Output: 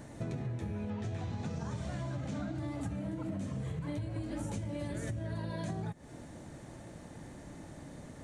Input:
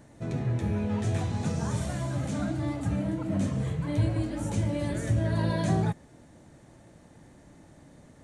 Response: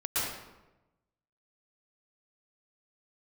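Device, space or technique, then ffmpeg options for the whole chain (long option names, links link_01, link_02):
serial compression, leveller first: -filter_complex "[0:a]asettb=1/sr,asplit=3[link_01][link_02][link_03];[link_01]atrim=end=0.904[link_04];[link_02]atrim=start=0.9:end=2.58,asetpts=PTS-STARTPTS,afade=type=in:duration=0.004:curve=qsin,afade=type=out:start_time=1.676:duration=0.004:curve=qsin,lowpass=5800[link_05];[link_03]atrim=start=2.576[link_06];[link_04][link_05]acrossfade=duration=0.004:curve1=hsin:curve2=qsin[link_07];[link_07][link_06]acrossfade=duration=0.004:curve1=qsin:curve2=hsin,acompressor=threshold=-32dB:ratio=2.5,acompressor=threshold=-40dB:ratio=6,volume=5dB"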